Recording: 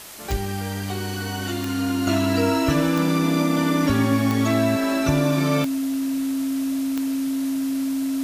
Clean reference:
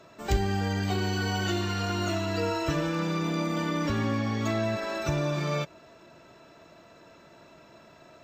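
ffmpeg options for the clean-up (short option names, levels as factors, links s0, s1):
-af "adeclick=t=4,bandreject=f=270:w=30,afwtdn=0.011,asetnsamples=n=441:p=0,asendcmd='2.07 volume volume -6.5dB',volume=1"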